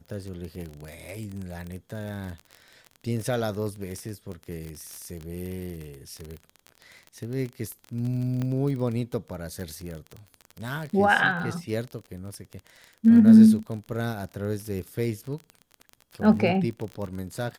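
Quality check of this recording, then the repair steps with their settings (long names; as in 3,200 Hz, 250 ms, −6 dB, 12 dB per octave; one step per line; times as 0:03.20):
surface crackle 28 per second −31 dBFS
0:08.42: click −19 dBFS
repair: click removal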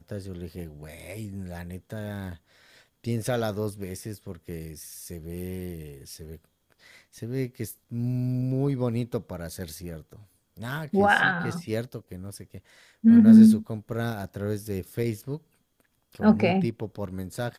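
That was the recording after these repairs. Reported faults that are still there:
none of them is left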